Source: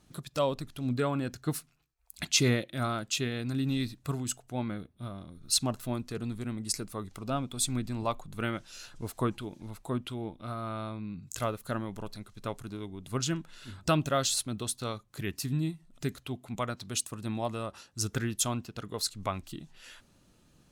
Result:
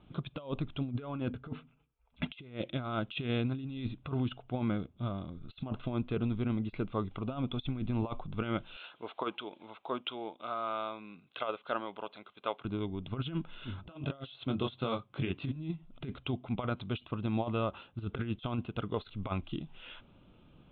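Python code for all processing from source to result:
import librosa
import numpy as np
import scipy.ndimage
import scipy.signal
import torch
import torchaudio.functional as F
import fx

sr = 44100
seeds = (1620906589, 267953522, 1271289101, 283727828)

y = fx.chain(x, sr, fx.peak_eq(hz=5500.0, db=-11.5, octaves=1.2),
    fx.notch_comb(f0_hz=360.0),
    fx.small_body(hz=(250.0, 440.0), ring_ms=70, db=8), at=(1.3, 2.3))
y = fx.chain(y, sr, fx.highpass(hz=520.0, slope=12),
    fx.high_shelf(hz=5300.0, db=6.0), at=(8.76, 12.65))
y = fx.chain(y, sr, fx.highpass(hz=100.0, slope=12),
    fx.doubler(ms=22.0, db=-3), at=(13.89, 15.56))
y = fx.over_compress(y, sr, threshold_db=-34.0, ratio=-0.5)
y = scipy.signal.sosfilt(scipy.signal.butter(16, 3600.0, 'lowpass', fs=sr, output='sos'), y)
y = fx.peak_eq(y, sr, hz=1800.0, db=-15.0, octaves=0.22)
y = F.gain(torch.from_numpy(y), 1.0).numpy()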